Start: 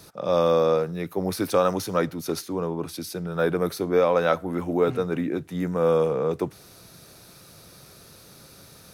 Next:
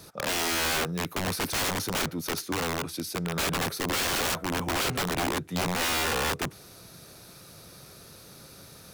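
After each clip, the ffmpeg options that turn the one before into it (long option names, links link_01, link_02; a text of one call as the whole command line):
ffmpeg -i in.wav -af "aeval=exprs='(mod(13.3*val(0)+1,2)-1)/13.3':channel_layout=same" out.wav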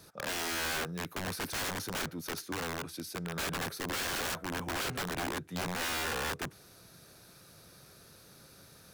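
ffmpeg -i in.wav -af "equalizer=frequency=1600:width=5.1:gain=4.5,volume=-7.5dB" out.wav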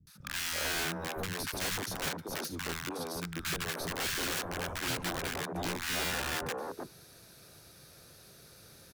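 ffmpeg -i in.wav -filter_complex "[0:a]acrossover=split=210|1100[link_01][link_02][link_03];[link_03]adelay=70[link_04];[link_02]adelay=380[link_05];[link_01][link_05][link_04]amix=inputs=3:normalize=0,volume=1.5dB" out.wav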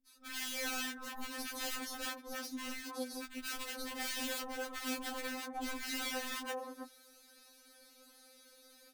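ffmpeg -i in.wav -af "afftfilt=real='re*3.46*eq(mod(b,12),0)':imag='im*3.46*eq(mod(b,12),0)':win_size=2048:overlap=0.75,volume=-3dB" out.wav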